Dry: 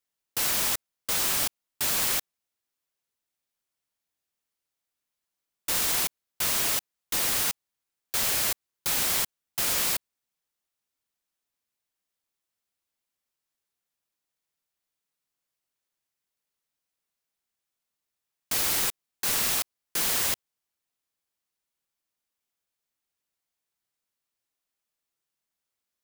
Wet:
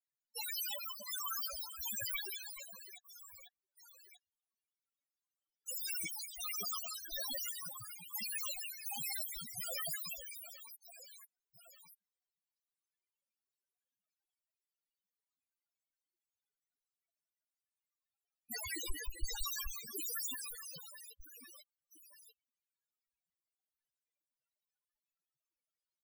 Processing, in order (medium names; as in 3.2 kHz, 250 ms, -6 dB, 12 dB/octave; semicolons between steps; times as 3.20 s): 18.56–19.39 s: Schmitt trigger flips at -42.5 dBFS; reverse bouncing-ball echo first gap 180 ms, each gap 1.4×, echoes 5; loudest bins only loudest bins 4; trim +5 dB